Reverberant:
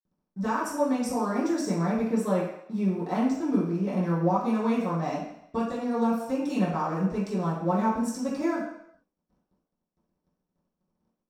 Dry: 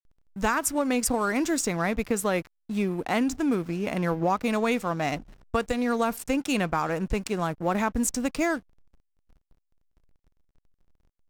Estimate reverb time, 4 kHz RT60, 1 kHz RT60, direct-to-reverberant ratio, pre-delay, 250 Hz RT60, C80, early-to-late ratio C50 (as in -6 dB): 0.70 s, 0.70 s, 0.75 s, -13.0 dB, 3 ms, 0.55 s, 6.0 dB, 3.5 dB